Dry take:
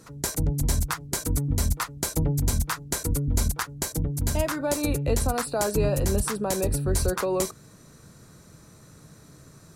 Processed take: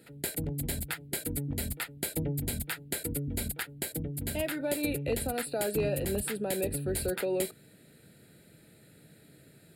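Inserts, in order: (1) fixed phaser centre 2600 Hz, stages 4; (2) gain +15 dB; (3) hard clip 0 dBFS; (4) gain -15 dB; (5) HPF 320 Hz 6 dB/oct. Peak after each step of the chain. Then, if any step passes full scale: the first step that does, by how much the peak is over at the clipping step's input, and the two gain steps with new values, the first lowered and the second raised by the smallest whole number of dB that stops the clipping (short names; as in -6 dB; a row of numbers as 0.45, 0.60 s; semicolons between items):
-12.0, +3.0, 0.0, -15.0, -16.0 dBFS; step 2, 3.0 dB; step 2 +12 dB, step 4 -12 dB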